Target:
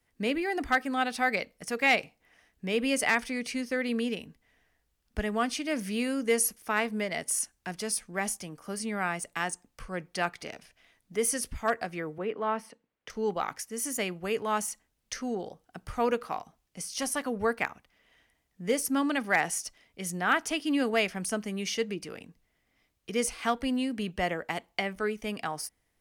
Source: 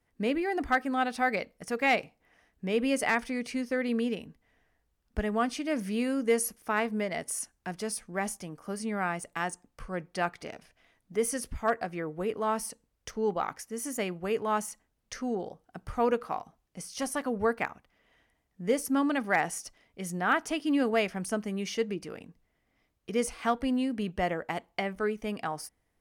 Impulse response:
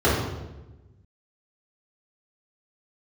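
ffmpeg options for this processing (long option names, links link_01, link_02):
-filter_complex "[0:a]acrossover=split=440|1900[link_01][link_02][link_03];[link_03]acontrast=53[link_04];[link_01][link_02][link_04]amix=inputs=3:normalize=0,asettb=1/sr,asplit=3[link_05][link_06][link_07];[link_05]atrim=end=12.184[link_08];[link_06]atrim=start=12.18:end=13.1,asetpts=PTS-STARTPTS,afade=type=in:duration=0.004:curve=qsin,afade=type=out:start_time=0.916:duration=0.004:curve=qsin,acrossover=split=150 3100:gain=0.0794 1 0.0708[link_09][link_10][link_11];[link_09][link_10][link_11]amix=inputs=3:normalize=0[link_12];[link_07]atrim=start=13.096[link_13];[link_08][link_12]acrossfade=duration=0.004:curve1=hsin:curve2=qsin[link_14];[link_14][link_13]acrossfade=duration=0.004:curve1=qsin:curve2=hsin,volume=-1dB"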